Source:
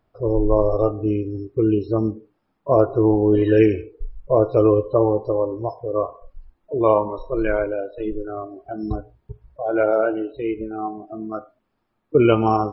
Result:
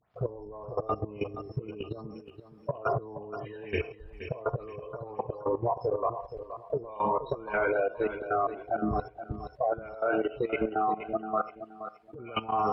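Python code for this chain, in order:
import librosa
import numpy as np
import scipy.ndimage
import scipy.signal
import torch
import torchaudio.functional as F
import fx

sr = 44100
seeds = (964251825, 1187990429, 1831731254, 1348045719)

y = fx.spec_delay(x, sr, highs='late', ms=181)
y = fx.over_compress(y, sr, threshold_db=-26.0, ratio=-1.0)
y = scipy.signal.sosfilt(scipy.signal.butter(2, 80.0, 'highpass', fs=sr, output='sos'), y)
y = fx.peak_eq(y, sr, hz=300.0, db=-14.0, octaves=0.93)
y = fx.notch(y, sr, hz=530.0, q=15.0)
y = fx.level_steps(y, sr, step_db=16)
y = fx.low_shelf(y, sr, hz=190.0, db=-3.5)
y = fx.echo_feedback(y, sr, ms=473, feedback_pct=25, wet_db=-11.5)
y = fx.env_lowpass_down(y, sr, base_hz=2600.0, full_db=-30.5)
y = fx.transformer_sat(y, sr, knee_hz=160.0)
y = F.gain(torch.from_numpy(y), 6.0).numpy()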